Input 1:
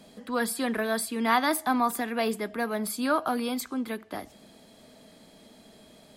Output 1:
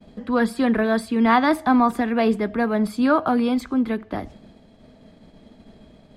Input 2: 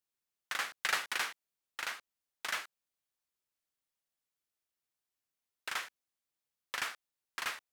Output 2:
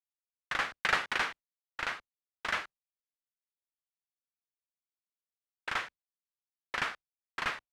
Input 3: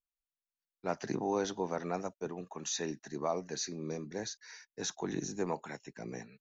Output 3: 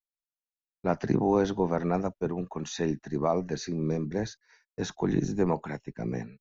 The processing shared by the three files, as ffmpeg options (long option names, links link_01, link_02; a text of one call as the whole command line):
ffmpeg -i in.wav -af "aemphasis=mode=reproduction:type=bsi,agate=range=-33dB:threshold=-44dB:ratio=3:detection=peak,highshelf=frequency=5400:gain=-5.5,volume=6dB" out.wav